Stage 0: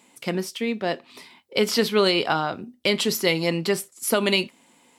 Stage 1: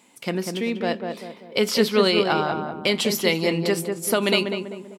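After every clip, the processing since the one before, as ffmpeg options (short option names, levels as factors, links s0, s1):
-filter_complex "[0:a]asplit=2[s0][s1];[s1]adelay=195,lowpass=f=1200:p=1,volume=0.631,asplit=2[s2][s3];[s3]adelay=195,lowpass=f=1200:p=1,volume=0.46,asplit=2[s4][s5];[s5]adelay=195,lowpass=f=1200:p=1,volume=0.46,asplit=2[s6][s7];[s7]adelay=195,lowpass=f=1200:p=1,volume=0.46,asplit=2[s8][s9];[s9]adelay=195,lowpass=f=1200:p=1,volume=0.46,asplit=2[s10][s11];[s11]adelay=195,lowpass=f=1200:p=1,volume=0.46[s12];[s0][s2][s4][s6][s8][s10][s12]amix=inputs=7:normalize=0"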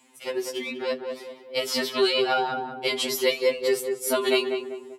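-af "highpass=f=150:w=0.5412,highpass=f=150:w=1.3066,afftfilt=real='re*2.45*eq(mod(b,6),0)':imag='im*2.45*eq(mod(b,6),0)':win_size=2048:overlap=0.75"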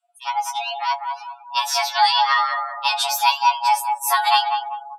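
-af "afreqshift=450,afftdn=nr=30:nf=-44,volume=1.88"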